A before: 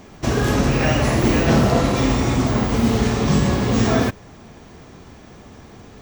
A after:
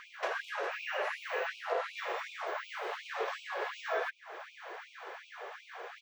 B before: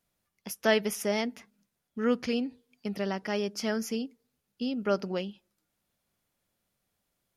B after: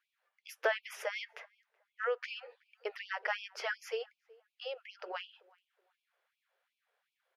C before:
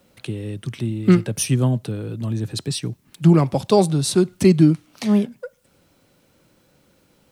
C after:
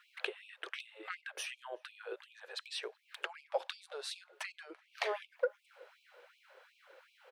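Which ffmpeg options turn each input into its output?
-filter_complex "[0:a]equalizer=f=100:t=o:w=0.33:g=7,equalizer=f=200:t=o:w=0.33:g=-10,equalizer=f=500:t=o:w=0.33:g=4,equalizer=f=1.6k:t=o:w=0.33:g=5,acompressor=threshold=-29dB:ratio=8,acrossover=split=390 3300:gain=0.2 1 0.1[a][b][c];[a][b][c]amix=inputs=3:normalize=0,asplit=2[d][e];[e]adelay=376,lowpass=f=1.1k:p=1,volume=-23dB,asplit=2[f][g];[g]adelay=376,lowpass=f=1.1k:p=1,volume=0.35[h];[d][f][h]amix=inputs=3:normalize=0,afftfilt=real='re*gte(b*sr/1024,340*pow(2300/340,0.5+0.5*sin(2*PI*2.7*pts/sr)))':imag='im*gte(b*sr/1024,340*pow(2300/340,0.5+0.5*sin(2*PI*2.7*pts/sr)))':win_size=1024:overlap=0.75,volume=4dB"

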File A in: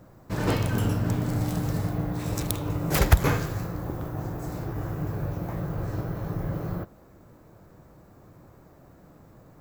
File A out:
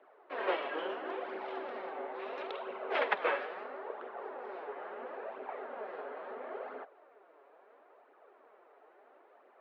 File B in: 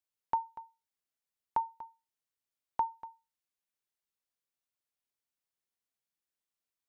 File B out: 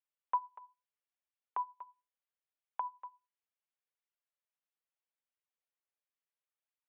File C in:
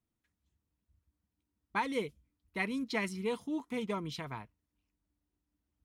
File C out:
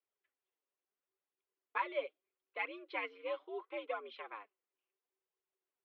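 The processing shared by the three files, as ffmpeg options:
-af "highpass=f=340:t=q:w=0.5412,highpass=f=340:t=q:w=1.307,lowpass=f=3.2k:t=q:w=0.5176,lowpass=f=3.2k:t=q:w=0.7071,lowpass=f=3.2k:t=q:w=1.932,afreqshift=85,flanger=delay=0.3:depth=7.1:regen=23:speed=0.74:shape=triangular"

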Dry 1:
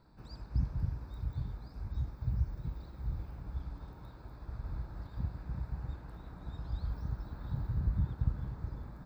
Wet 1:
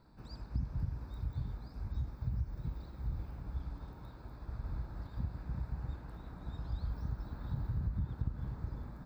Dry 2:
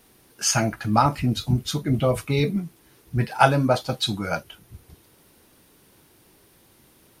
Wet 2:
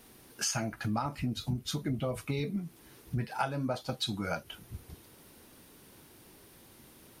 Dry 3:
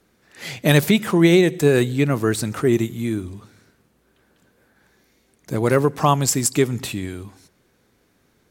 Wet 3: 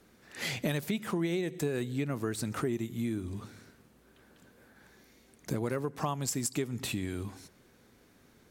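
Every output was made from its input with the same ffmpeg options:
-af "equalizer=f=240:w=5.4:g=3,acompressor=threshold=-31dB:ratio=5"

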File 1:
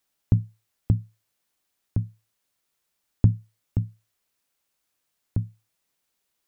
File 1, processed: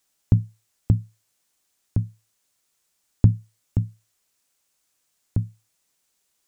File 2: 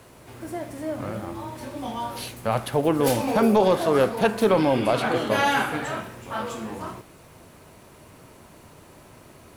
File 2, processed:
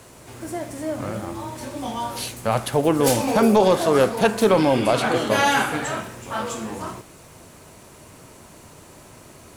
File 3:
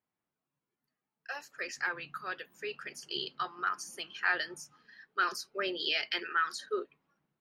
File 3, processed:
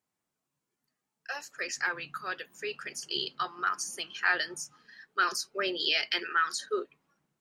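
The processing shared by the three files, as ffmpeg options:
-af "equalizer=f=7.3k:t=o:w=1.1:g=7,volume=2.5dB"

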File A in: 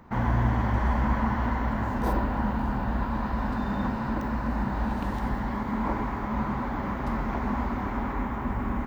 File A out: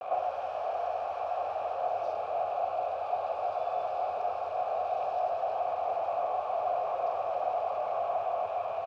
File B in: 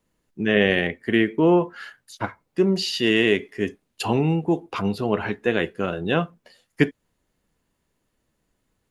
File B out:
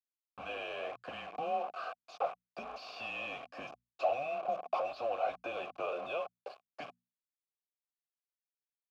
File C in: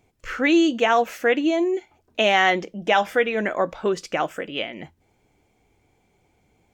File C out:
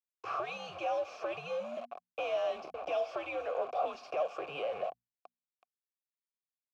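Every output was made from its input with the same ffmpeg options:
-filter_complex "[0:a]acrossover=split=240|3000[a][b][c];[b]acompressor=threshold=-28dB:ratio=6[d];[a][d][c]amix=inputs=3:normalize=0,firequalizer=gain_entry='entry(260,0);entry(400,-13);entry(670,6);entry(950,-6);entry(1700,-12);entry(2900,-12);entry(5400,5);entry(9100,-14)':delay=0.05:min_phase=1,afreqshift=-140,acrossover=split=1800[e][f];[e]acompressor=threshold=-38dB:ratio=12[g];[g][f]amix=inputs=2:normalize=0,acrusher=bits=8:mix=0:aa=0.000001,bandreject=f=60:t=h:w=6,bandreject=f=120:t=h:w=6,bandreject=f=180:t=h:w=6,bandreject=f=240:t=h:w=6,asplit=2[h][i];[i]highpass=f=720:p=1,volume=33dB,asoftclip=type=tanh:threshold=-17dB[j];[h][j]amix=inputs=2:normalize=0,lowpass=f=1.1k:p=1,volume=-6dB,asplit=3[k][l][m];[k]bandpass=f=730:t=q:w=8,volume=0dB[n];[l]bandpass=f=1.09k:t=q:w=8,volume=-6dB[o];[m]bandpass=f=2.44k:t=q:w=8,volume=-9dB[p];[n][o][p]amix=inputs=3:normalize=0,volume=5dB"

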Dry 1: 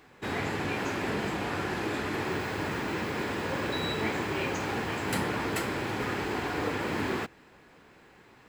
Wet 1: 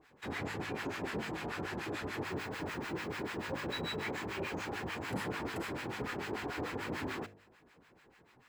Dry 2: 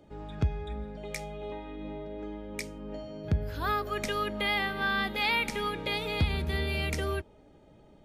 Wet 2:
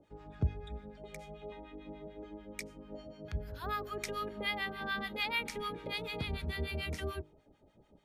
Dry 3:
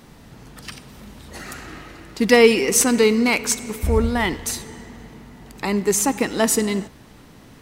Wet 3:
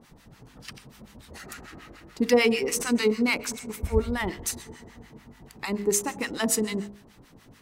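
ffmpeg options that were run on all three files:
-filter_complex "[0:a]acrossover=split=930[a][b];[a]aeval=exprs='val(0)*(1-1/2+1/2*cos(2*PI*6.8*n/s))':c=same[c];[b]aeval=exprs='val(0)*(1-1/2-1/2*cos(2*PI*6.8*n/s))':c=same[d];[c][d]amix=inputs=2:normalize=0,bandreject=f=51:t=h:w=4,bandreject=f=102:t=h:w=4,bandreject=f=153:t=h:w=4,bandreject=f=204:t=h:w=4,bandreject=f=255:t=h:w=4,bandreject=f=306:t=h:w=4,bandreject=f=357:t=h:w=4,bandreject=f=408:t=h:w=4,bandreject=f=459:t=h:w=4,bandreject=f=510:t=h:w=4,bandreject=f=561:t=h:w=4,bandreject=f=612:t=h:w=4,bandreject=f=663:t=h:w=4,bandreject=f=714:t=h:w=4,volume=-2.5dB"

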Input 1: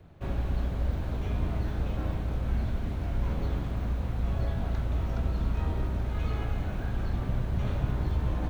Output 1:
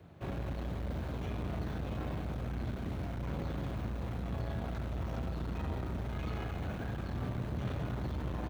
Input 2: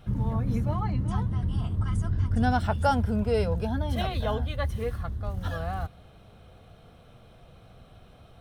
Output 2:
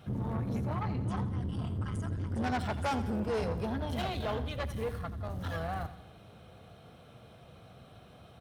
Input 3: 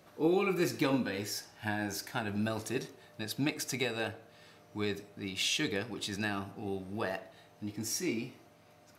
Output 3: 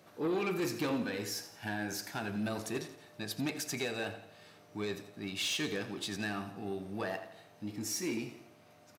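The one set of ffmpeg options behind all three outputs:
-af "asoftclip=type=tanh:threshold=-28dB,highpass=91,aecho=1:1:85|170|255|340|425:0.2|0.0998|0.0499|0.0249|0.0125"

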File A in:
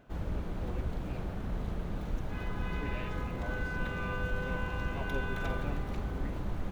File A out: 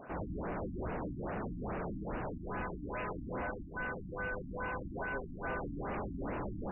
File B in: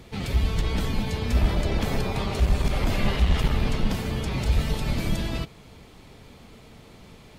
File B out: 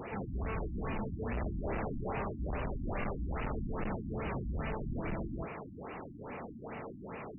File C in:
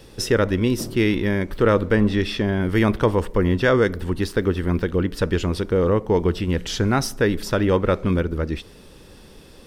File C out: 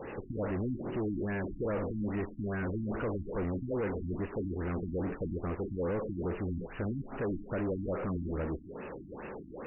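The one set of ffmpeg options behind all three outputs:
-filter_complex "[0:a]asoftclip=type=hard:threshold=-21dB,asplit=2[a][b];[b]highpass=f=720:p=1,volume=31dB,asoftclip=type=tanh:threshold=-21dB[c];[a][c]amix=inputs=2:normalize=0,lowpass=f=1.6k:p=1,volume=-6dB,afftfilt=real='re*lt(b*sr/1024,310*pow(3000/310,0.5+0.5*sin(2*PI*2.4*pts/sr)))':imag='im*lt(b*sr/1024,310*pow(3000/310,0.5+0.5*sin(2*PI*2.4*pts/sr)))':win_size=1024:overlap=0.75,volume=-8dB"

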